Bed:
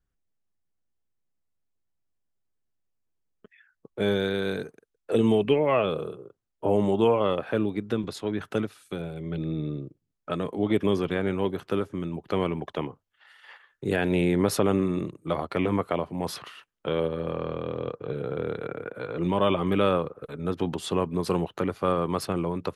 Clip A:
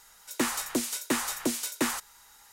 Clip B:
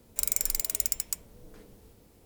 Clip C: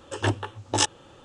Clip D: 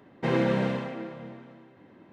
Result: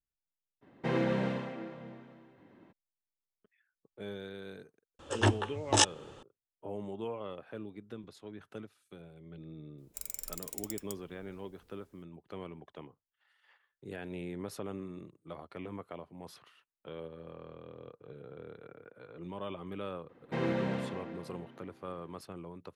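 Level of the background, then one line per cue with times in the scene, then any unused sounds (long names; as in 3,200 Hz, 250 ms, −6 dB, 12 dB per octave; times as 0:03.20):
bed −17.5 dB
0:00.61: mix in D −5.5 dB, fades 0.02 s
0:04.99: mix in C −2 dB
0:09.78: mix in B −13.5 dB
0:20.09: mix in D −7.5 dB
not used: A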